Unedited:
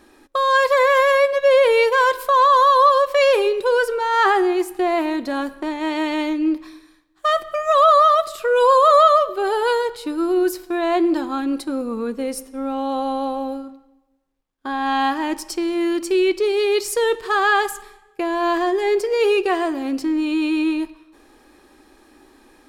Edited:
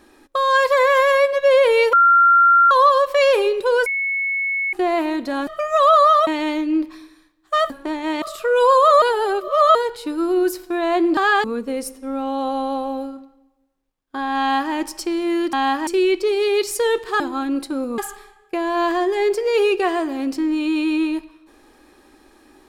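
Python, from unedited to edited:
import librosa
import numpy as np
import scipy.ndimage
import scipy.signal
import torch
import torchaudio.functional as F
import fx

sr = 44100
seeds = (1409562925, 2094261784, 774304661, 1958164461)

y = fx.edit(x, sr, fx.bleep(start_s=1.93, length_s=0.78, hz=1380.0, db=-9.0),
    fx.bleep(start_s=3.86, length_s=0.87, hz=2200.0, db=-19.0),
    fx.swap(start_s=5.47, length_s=0.52, other_s=7.42, other_length_s=0.8),
    fx.reverse_span(start_s=9.02, length_s=0.73),
    fx.swap(start_s=11.17, length_s=0.78, other_s=17.37, other_length_s=0.27),
    fx.duplicate(start_s=14.9, length_s=0.34, to_s=16.04), tone=tone)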